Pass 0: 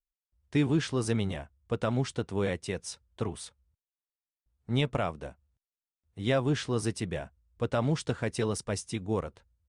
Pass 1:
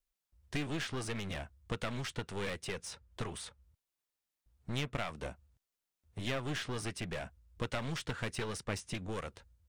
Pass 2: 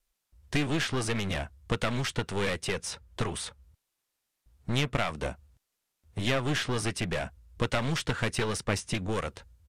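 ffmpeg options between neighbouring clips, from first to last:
ffmpeg -i in.wav -filter_complex "[0:a]acrossover=split=1400|2900[link_01][link_02][link_03];[link_01]acompressor=threshold=-40dB:ratio=4[link_04];[link_02]acompressor=threshold=-42dB:ratio=4[link_05];[link_03]acompressor=threshold=-52dB:ratio=4[link_06];[link_04][link_05][link_06]amix=inputs=3:normalize=0,aeval=exprs='clip(val(0),-1,0.00596)':channel_layout=same,volume=5.5dB" out.wav
ffmpeg -i in.wav -af "aresample=32000,aresample=44100,volume=8.5dB" out.wav

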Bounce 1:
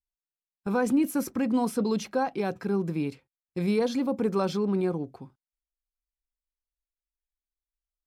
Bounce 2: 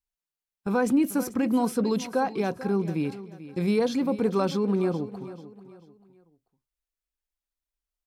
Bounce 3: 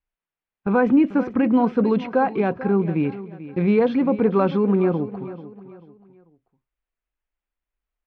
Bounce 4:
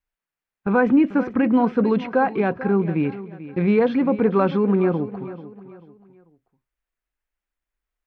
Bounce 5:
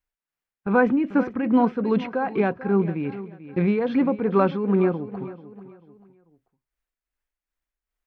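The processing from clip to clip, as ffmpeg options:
ffmpeg -i in.wav -af "aecho=1:1:440|880|1320:0.178|0.0622|0.0218,volume=1.5dB" out.wav
ffmpeg -i in.wav -af "lowpass=frequency=2700:width=0.5412,lowpass=frequency=2700:width=1.3066,volume=6dB" out.wav
ffmpeg -i in.wav -af "equalizer=frequency=1700:width_type=o:width=0.79:gain=3.5" out.wav
ffmpeg -i in.wav -af "tremolo=f=2.5:d=0.56" out.wav

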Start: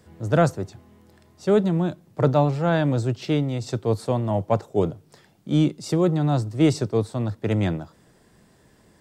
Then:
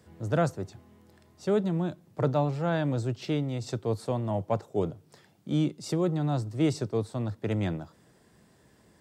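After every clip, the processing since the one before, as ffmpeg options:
ffmpeg -i in.wav -filter_complex "[0:a]highpass=51,asplit=2[link_01][link_02];[link_02]acompressor=threshold=-27dB:ratio=6,volume=-3dB[link_03];[link_01][link_03]amix=inputs=2:normalize=0,volume=-8.5dB" out.wav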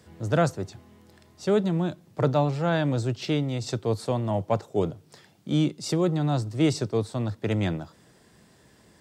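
ffmpeg -i in.wav -af "equalizer=frequency=4300:width_type=o:width=2.4:gain=4,volume=3dB" out.wav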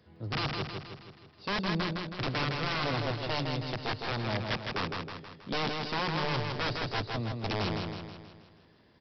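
ffmpeg -i in.wav -af "aresample=11025,aeval=exprs='(mod(8.91*val(0)+1,2)-1)/8.91':channel_layout=same,aresample=44100,aecho=1:1:160|320|480|640|800|960|1120:0.631|0.328|0.171|0.0887|0.0461|0.024|0.0125,volume=-7dB" out.wav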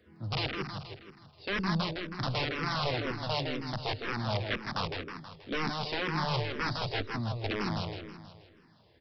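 ffmpeg -i in.wav -filter_complex "[0:a]asplit=2[link_01][link_02];[link_02]afreqshift=-2[link_03];[link_01][link_03]amix=inputs=2:normalize=1,volume=2.5dB" out.wav

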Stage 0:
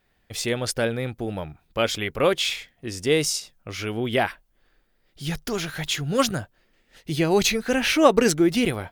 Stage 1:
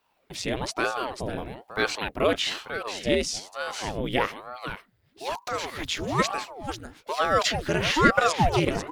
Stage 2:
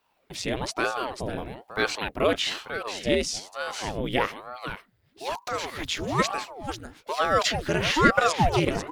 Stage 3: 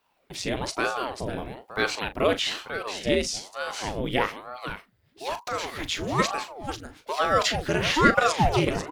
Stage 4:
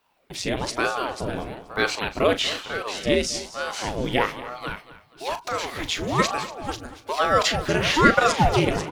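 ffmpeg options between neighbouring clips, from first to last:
ffmpeg -i in.wav -filter_complex "[0:a]aecho=1:1:494:0.316,acrossover=split=7400[link_01][link_02];[link_02]acompressor=threshold=-48dB:ratio=4:attack=1:release=60[link_03];[link_01][link_03]amix=inputs=2:normalize=0,aeval=exprs='val(0)*sin(2*PI*540*n/s+540*0.85/1.1*sin(2*PI*1.1*n/s))':channel_layout=same" out.wav
ffmpeg -i in.wav -af anull out.wav
ffmpeg -i in.wav -filter_complex "[0:a]asplit=2[link_01][link_02];[link_02]adelay=39,volume=-12dB[link_03];[link_01][link_03]amix=inputs=2:normalize=0" out.wav
ffmpeg -i in.wav -af "aecho=1:1:238|476|714:0.158|0.0618|0.0241,volume=2.5dB" out.wav

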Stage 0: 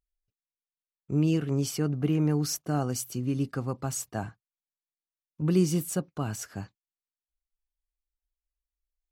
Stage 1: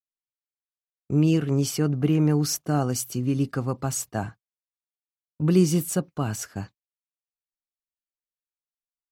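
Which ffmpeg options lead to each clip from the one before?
ffmpeg -i in.wav -af "agate=range=-33dB:threshold=-41dB:ratio=3:detection=peak,volume=4.5dB" out.wav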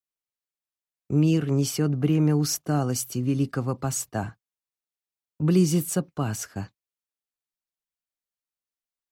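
ffmpeg -i in.wav -filter_complex "[0:a]acrossover=split=270|3000[link_01][link_02][link_03];[link_02]acompressor=threshold=-23dB:ratio=6[link_04];[link_01][link_04][link_03]amix=inputs=3:normalize=0" out.wav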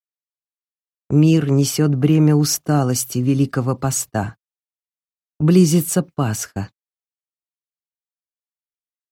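ffmpeg -i in.wav -af "agate=range=-24dB:threshold=-39dB:ratio=16:detection=peak,volume=7.5dB" out.wav

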